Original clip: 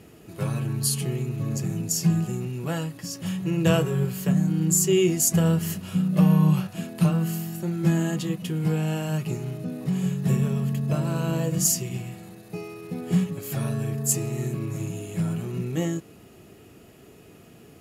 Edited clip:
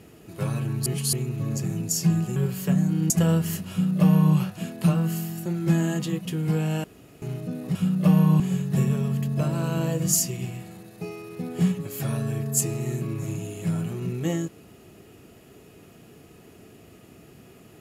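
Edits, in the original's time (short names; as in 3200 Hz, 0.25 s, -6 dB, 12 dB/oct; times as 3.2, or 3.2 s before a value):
0.86–1.13 reverse
2.36–3.95 cut
4.69–5.27 cut
5.88–6.53 copy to 9.92
9.01–9.39 room tone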